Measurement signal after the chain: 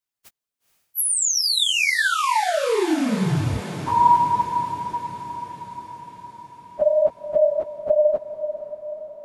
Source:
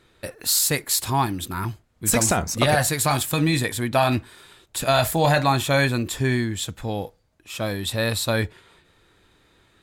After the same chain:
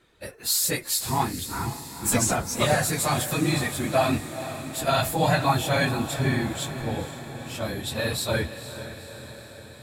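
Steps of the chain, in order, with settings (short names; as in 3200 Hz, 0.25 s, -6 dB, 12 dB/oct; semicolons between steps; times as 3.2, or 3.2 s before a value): phase scrambler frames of 50 ms; diffused feedback echo 0.479 s, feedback 64%, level -11.5 dB; gain -3.5 dB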